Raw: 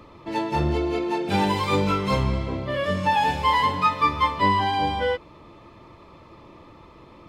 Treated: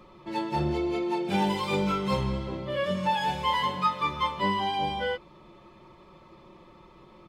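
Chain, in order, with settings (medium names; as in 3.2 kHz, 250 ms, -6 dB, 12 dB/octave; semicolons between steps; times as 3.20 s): comb 5.4 ms, depth 62%; trim -6 dB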